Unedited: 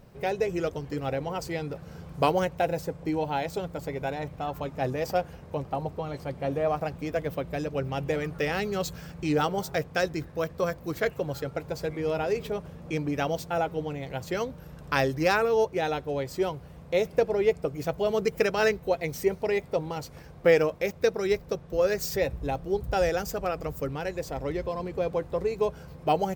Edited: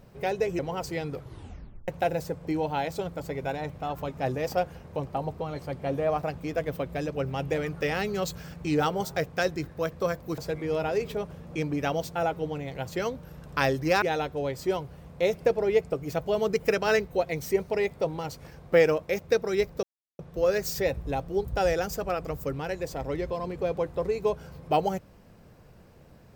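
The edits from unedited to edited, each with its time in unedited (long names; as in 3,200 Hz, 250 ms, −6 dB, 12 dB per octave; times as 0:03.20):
0:00.59–0:01.17: remove
0:01.69: tape stop 0.77 s
0:10.96–0:11.73: remove
0:15.37–0:15.74: remove
0:21.55: splice in silence 0.36 s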